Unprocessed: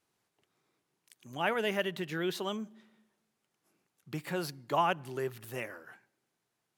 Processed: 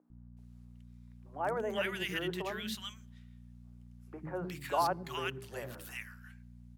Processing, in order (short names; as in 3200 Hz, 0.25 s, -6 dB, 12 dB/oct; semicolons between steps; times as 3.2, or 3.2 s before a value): hum 60 Hz, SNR 11 dB; low shelf 66 Hz -10.5 dB; notches 50/100/150/200/250/300/350/400 Hz; three bands offset in time mids, lows, highs 0.1/0.37 s, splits 310/1400 Hz